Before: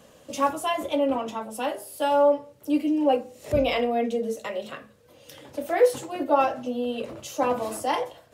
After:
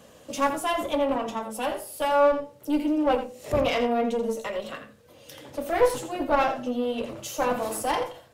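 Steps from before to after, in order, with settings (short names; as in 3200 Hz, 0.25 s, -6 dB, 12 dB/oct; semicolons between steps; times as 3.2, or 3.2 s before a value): one diode to ground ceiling -25 dBFS; 7.22–7.83 high shelf 9200 Hz +5.5 dB; echo 84 ms -10.5 dB; gain +1.5 dB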